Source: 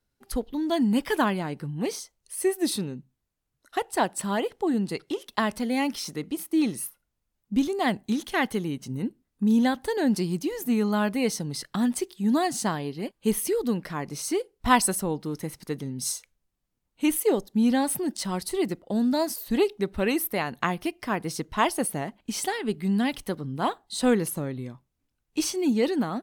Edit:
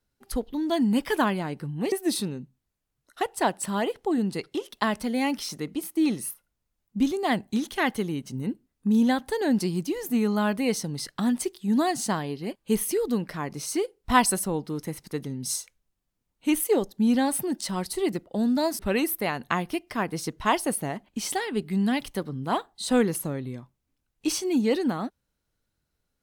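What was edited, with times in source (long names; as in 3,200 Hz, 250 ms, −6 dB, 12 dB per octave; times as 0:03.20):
0:01.92–0:02.48: remove
0:19.35–0:19.91: remove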